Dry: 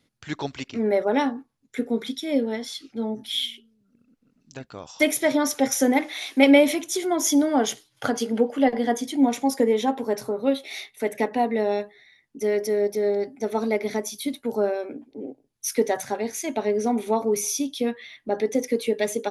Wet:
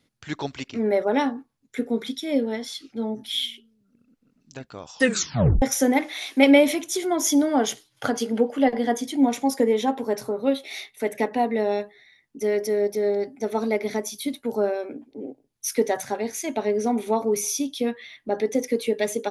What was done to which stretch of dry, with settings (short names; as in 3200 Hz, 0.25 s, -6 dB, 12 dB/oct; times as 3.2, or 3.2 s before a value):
4.94 tape stop 0.68 s